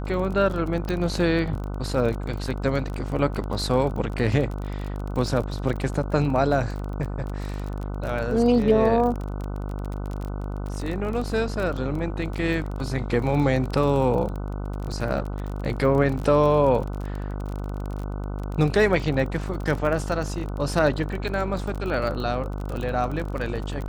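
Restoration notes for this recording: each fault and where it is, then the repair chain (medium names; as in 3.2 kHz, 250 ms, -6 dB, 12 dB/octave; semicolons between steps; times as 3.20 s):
buzz 50 Hz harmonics 30 -30 dBFS
crackle 29 per s -29 dBFS
0.89 s: pop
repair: de-click; de-hum 50 Hz, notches 30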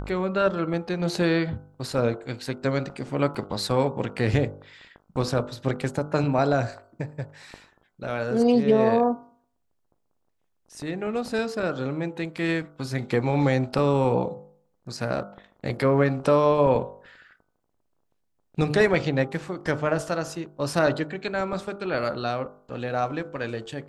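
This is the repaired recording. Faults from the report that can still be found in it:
nothing left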